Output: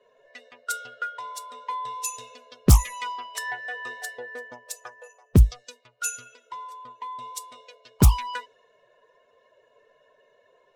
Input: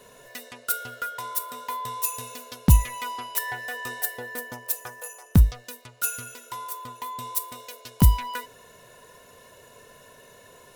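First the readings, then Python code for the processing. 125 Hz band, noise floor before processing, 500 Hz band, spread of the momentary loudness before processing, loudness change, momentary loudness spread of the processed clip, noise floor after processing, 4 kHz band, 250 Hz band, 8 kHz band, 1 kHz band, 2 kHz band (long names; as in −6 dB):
+0.5 dB, −52 dBFS, +3.0 dB, 18 LU, +0.5 dB, 20 LU, −64 dBFS, 0.0 dB, +0.5 dB, 0.0 dB, −0.5 dB, 0.0 dB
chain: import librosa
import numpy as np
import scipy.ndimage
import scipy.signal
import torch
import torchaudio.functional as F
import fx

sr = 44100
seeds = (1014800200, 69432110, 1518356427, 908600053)

y = fx.bin_expand(x, sr, power=1.5)
y = fx.peak_eq(y, sr, hz=7000.0, db=7.5, octaves=0.99)
y = fx.env_lowpass(y, sr, base_hz=2100.0, full_db=-17.5)
y = fx.doppler_dist(y, sr, depth_ms=0.72)
y = F.gain(torch.from_numpy(y), 2.0).numpy()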